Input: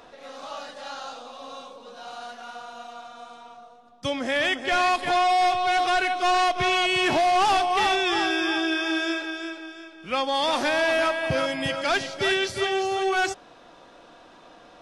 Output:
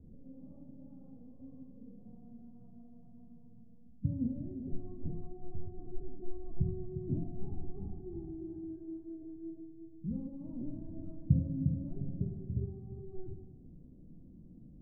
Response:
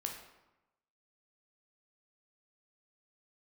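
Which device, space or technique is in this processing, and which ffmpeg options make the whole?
club heard from the street: -filter_complex "[0:a]alimiter=limit=0.0708:level=0:latency=1:release=150,lowpass=f=190:w=0.5412,lowpass=f=190:w=1.3066[s0];[1:a]atrim=start_sample=2205[s1];[s0][s1]afir=irnorm=-1:irlink=0,volume=4.22"

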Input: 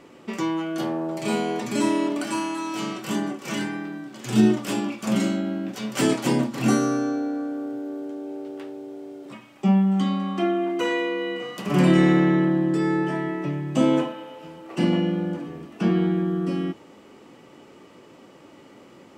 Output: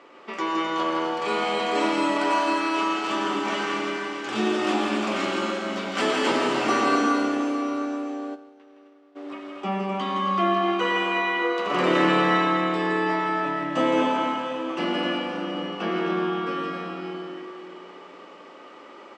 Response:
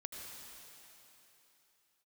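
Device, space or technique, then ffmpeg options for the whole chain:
station announcement: -filter_complex "[0:a]highpass=470,lowpass=4100,equalizer=f=1200:t=o:w=0.29:g=5.5,aecho=1:1:166.2|259.5:0.501|0.398[s0];[1:a]atrim=start_sample=2205[s1];[s0][s1]afir=irnorm=-1:irlink=0,asplit=3[s2][s3][s4];[s2]afade=t=out:st=8.34:d=0.02[s5];[s3]agate=range=0.0224:threshold=0.0316:ratio=3:detection=peak,afade=t=in:st=8.34:d=0.02,afade=t=out:st=9.15:d=0.02[s6];[s4]afade=t=in:st=9.15:d=0.02[s7];[s5][s6][s7]amix=inputs=3:normalize=0,volume=2.24"

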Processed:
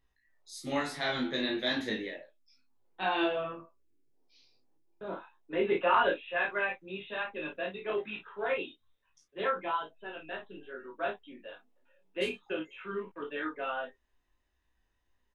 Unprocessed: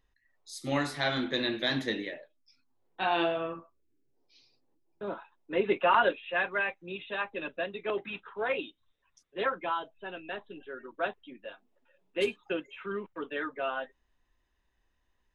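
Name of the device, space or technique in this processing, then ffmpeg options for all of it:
double-tracked vocal: -filter_complex "[0:a]asplit=2[s0][s1];[s1]adelay=32,volume=0.596[s2];[s0][s2]amix=inputs=2:normalize=0,flanger=delay=18.5:depth=2.5:speed=1.1"

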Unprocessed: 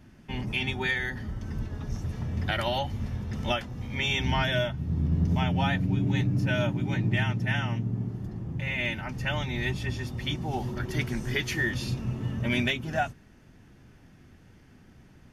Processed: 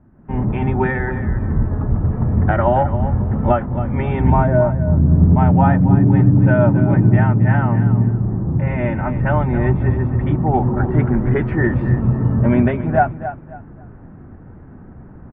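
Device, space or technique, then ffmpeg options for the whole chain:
action camera in a waterproof case: -filter_complex "[0:a]asettb=1/sr,asplit=3[s0][s1][s2];[s0]atrim=end=4.304[s3];[s1]atrim=start=4.3:end=5.08,asetpts=PTS-STARTPTS,afade=t=in:d=0.004:c=qsin,afade=t=out:st=0.776:d=0.004:c=qsin,lowpass=1100[s4];[s2]atrim=start=5.076[s5];[s3][s4]acrossfade=d=0.004:c1=hsin:c2=qsin[s6];[s6][s5]acrossfade=d=0.004:c1=qsin:c2=hsin,lowpass=f=1300:w=0.5412,lowpass=f=1300:w=1.3066,aecho=1:1:272|544|816:0.266|0.0639|0.0153,dynaudnorm=f=120:g=5:m=4.73,volume=1.19" -ar 48000 -c:a aac -b:a 96k

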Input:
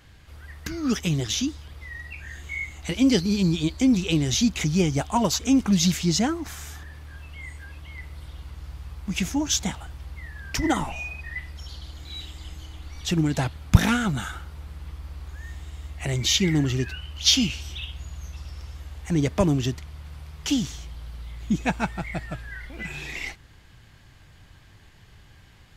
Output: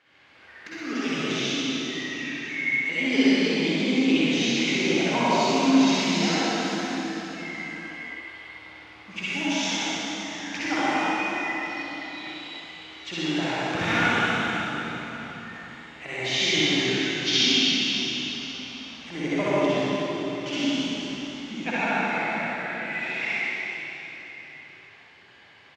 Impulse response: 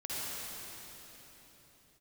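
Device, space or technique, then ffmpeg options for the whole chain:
station announcement: -filter_complex "[0:a]highpass=380,lowpass=3800,equalizer=f=2300:t=o:w=0.52:g=5,aecho=1:1:64.14|131.2:0.794|0.316[s0];[1:a]atrim=start_sample=2205[s1];[s0][s1]afir=irnorm=-1:irlink=0,volume=0.841"

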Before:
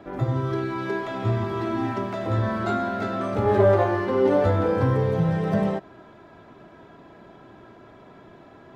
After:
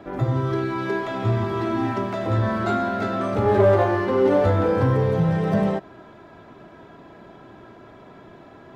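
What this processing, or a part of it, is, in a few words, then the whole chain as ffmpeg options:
parallel distortion: -filter_complex "[0:a]asplit=2[s0][s1];[s1]asoftclip=type=hard:threshold=0.0891,volume=0.355[s2];[s0][s2]amix=inputs=2:normalize=0"

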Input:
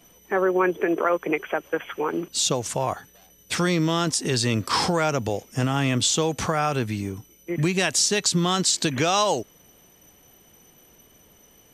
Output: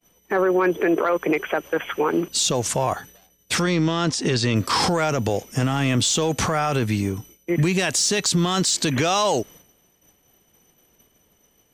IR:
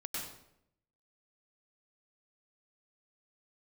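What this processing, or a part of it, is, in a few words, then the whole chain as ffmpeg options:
soft clipper into limiter: -filter_complex "[0:a]agate=range=0.0224:threshold=0.00562:ratio=3:detection=peak,asoftclip=type=tanh:threshold=0.316,alimiter=limit=0.119:level=0:latency=1:release=11,asettb=1/sr,asplit=3[s0][s1][s2];[s0]atrim=end=3.624[s3];[s1]atrim=start=3.62:end=4.56,asetpts=PTS-STARTPTS,afade=t=in:d=0.004:c=qsin,afade=t=out:st=0.936:d=0.004:c=qsin,lowpass=5800[s4];[s2]atrim=start=4.556[s5];[s3][s4]acrossfade=d=0.004:c1=hsin:c2=qsin[s6];[s6][s5]acrossfade=d=0.004:c1=qsin:c2=hsin,volume=2"

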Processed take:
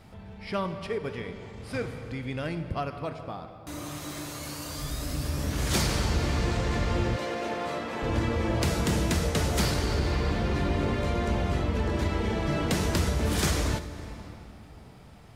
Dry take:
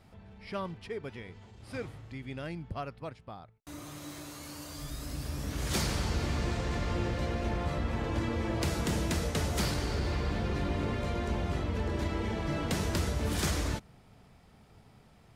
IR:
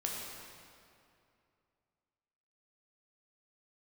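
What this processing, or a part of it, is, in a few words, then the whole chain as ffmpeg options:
compressed reverb return: -filter_complex "[0:a]asplit=2[s0][s1];[1:a]atrim=start_sample=2205[s2];[s1][s2]afir=irnorm=-1:irlink=0,acompressor=threshold=0.0224:ratio=6,volume=0.631[s3];[s0][s3]amix=inputs=2:normalize=0,asettb=1/sr,asplit=3[s4][s5][s6];[s4]atrim=end=7.164[s7];[s5]atrim=start=7.16:end=8.03,asetpts=PTS-STARTPTS,afade=t=in:d=0.004:c=qsin,afade=t=out:st=0.866:d=0.004:c=qsin,highpass=300[s8];[s6]atrim=start=8.026[s9];[s7][s8]acrossfade=d=0.004:c1=hsin:c2=qsin[s10];[s10][s9]acrossfade=d=0.004:c1=qsin:c2=hsin,volume=1.41"

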